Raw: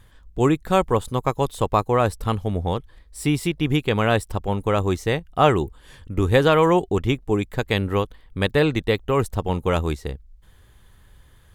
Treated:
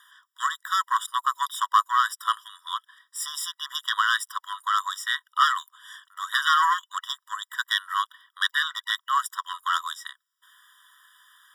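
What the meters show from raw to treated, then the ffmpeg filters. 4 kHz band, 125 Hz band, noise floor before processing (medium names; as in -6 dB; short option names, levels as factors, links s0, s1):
+4.0 dB, under -40 dB, -52 dBFS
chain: -af "asoftclip=type=hard:threshold=0.237,acontrast=77,afftfilt=real='re*eq(mod(floor(b*sr/1024/970),2),1)':imag='im*eq(mod(floor(b*sr/1024/970),2),1)':win_size=1024:overlap=0.75"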